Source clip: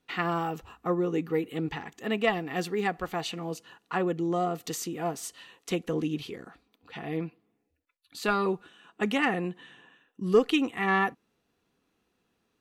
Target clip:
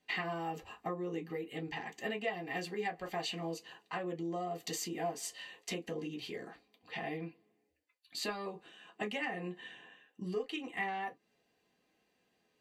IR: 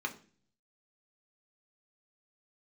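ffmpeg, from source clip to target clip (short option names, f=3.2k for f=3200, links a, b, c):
-filter_complex "[0:a]acompressor=threshold=-34dB:ratio=8[a];[1:a]atrim=start_sample=2205,atrim=end_sample=3969,asetrate=83790,aresample=44100[b];[a][b]afir=irnorm=-1:irlink=0,volume=3dB"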